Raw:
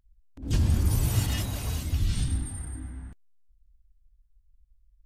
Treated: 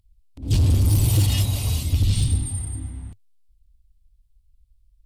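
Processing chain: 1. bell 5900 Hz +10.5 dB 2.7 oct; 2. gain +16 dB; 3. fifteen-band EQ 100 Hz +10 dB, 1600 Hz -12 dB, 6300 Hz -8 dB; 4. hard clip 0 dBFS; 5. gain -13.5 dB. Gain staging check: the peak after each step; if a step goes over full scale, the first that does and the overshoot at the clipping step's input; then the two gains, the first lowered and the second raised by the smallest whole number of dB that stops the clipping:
-10.5, +5.5, +10.0, 0.0, -13.5 dBFS; step 2, 10.0 dB; step 2 +6 dB, step 5 -3.5 dB

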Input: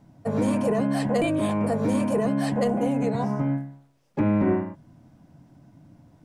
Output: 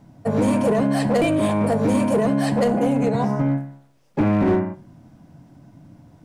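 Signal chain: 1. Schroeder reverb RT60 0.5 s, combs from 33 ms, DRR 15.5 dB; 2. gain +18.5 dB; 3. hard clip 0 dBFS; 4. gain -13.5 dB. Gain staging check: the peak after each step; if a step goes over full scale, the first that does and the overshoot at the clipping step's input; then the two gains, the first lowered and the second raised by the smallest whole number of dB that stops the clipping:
-13.0, +5.5, 0.0, -13.5 dBFS; step 2, 5.5 dB; step 2 +12.5 dB, step 4 -7.5 dB

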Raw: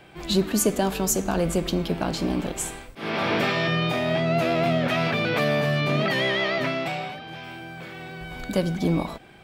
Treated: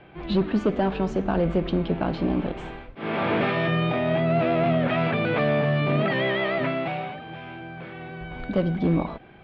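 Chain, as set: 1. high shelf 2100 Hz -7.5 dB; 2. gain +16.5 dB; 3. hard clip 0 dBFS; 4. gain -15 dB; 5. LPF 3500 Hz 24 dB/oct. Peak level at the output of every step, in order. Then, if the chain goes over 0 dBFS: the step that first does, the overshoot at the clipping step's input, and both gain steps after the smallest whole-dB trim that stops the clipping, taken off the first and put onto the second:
-10.0, +6.5, 0.0, -15.0, -14.5 dBFS; step 2, 6.5 dB; step 2 +9.5 dB, step 4 -8 dB

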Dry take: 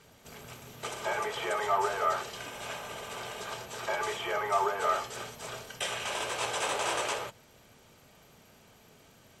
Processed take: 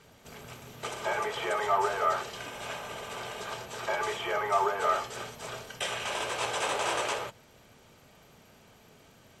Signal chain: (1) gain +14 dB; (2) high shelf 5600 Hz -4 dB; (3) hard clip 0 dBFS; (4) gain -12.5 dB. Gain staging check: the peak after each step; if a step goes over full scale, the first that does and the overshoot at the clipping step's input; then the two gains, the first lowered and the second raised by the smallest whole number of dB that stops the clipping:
-2.0, -2.0, -2.0, -14.5 dBFS; no overload

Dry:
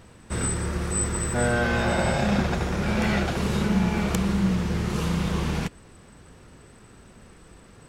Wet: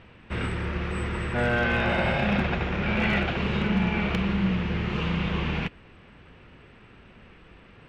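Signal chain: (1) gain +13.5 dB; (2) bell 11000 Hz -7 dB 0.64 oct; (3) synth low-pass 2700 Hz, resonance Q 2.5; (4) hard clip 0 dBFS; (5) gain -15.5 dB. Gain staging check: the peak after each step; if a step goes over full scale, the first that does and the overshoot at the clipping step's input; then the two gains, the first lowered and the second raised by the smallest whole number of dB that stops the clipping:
+3.5, +3.0, +5.5, 0.0, -15.5 dBFS; step 1, 5.5 dB; step 1 +7.5 dB, step 5 -9.5 dB

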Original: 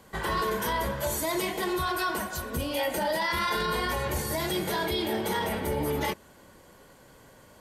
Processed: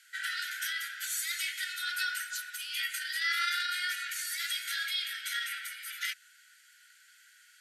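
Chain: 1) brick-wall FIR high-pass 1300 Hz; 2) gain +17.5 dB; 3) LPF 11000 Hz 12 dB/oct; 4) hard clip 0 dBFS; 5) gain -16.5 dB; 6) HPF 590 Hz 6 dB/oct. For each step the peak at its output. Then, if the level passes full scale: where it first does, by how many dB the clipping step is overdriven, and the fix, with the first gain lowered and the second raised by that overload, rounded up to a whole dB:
-19.5, -2.0, -2.0, -2.0, -18.5, -19.0 dBFS; no overload

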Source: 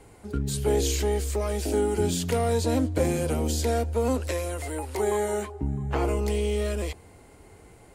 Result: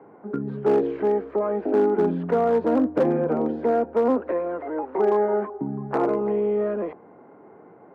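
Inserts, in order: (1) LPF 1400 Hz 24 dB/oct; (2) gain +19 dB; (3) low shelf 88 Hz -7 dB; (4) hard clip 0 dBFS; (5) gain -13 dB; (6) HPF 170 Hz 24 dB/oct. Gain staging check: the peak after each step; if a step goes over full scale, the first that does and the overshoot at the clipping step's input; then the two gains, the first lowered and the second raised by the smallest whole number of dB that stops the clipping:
-12.5, +6.5, +5.5, 0.0, -13.0, -8.5 dBFS; step 2, 5.5 dB; step 2 +13 dB, step 5 -7 dB

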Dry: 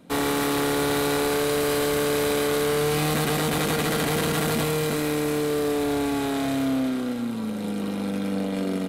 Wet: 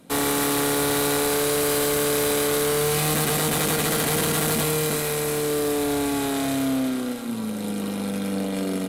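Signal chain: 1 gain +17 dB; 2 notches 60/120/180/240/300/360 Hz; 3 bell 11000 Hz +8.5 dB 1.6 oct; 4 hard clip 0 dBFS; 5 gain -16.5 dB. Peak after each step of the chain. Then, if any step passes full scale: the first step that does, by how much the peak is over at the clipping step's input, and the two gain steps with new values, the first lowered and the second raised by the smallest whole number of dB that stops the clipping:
+6.0, +5.0, +8.0, 0.0, -16.5 dBFS; step 1, 8.0 dB; step 1 +9 dB, step 5 -8.5 dB

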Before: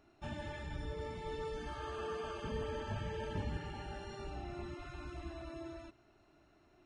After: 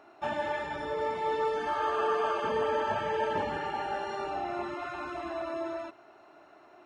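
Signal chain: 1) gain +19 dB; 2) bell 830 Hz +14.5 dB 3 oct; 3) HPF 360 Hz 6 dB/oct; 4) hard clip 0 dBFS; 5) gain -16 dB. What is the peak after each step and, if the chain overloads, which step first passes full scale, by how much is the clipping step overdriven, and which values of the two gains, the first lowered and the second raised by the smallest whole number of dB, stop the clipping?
-7.5, -1.0, -2.0, -2.0, -18.0 dBFS; no overload

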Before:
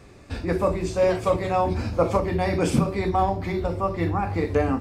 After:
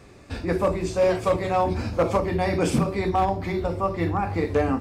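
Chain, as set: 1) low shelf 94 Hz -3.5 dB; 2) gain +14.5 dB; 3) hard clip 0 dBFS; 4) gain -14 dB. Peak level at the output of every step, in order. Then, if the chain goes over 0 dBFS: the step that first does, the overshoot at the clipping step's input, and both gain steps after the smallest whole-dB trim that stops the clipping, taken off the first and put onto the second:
-8.0, +6.5, 0.0, -14.0 dBFS; step 2, 6.5 dB; step 2 +7.5 dB, step 4 -7 dB

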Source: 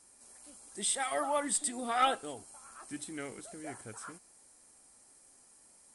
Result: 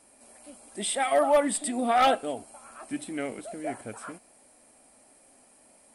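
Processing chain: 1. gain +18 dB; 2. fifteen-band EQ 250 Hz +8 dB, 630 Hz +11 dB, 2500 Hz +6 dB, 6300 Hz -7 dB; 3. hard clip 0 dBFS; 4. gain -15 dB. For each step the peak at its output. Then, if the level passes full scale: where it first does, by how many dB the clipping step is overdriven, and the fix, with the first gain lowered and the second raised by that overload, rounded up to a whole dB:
+2.0, +7.0, 0.0, -15.0 dBFS; step 1, 7.0 dB; step 1 +11 dB, step 4 -8 dB

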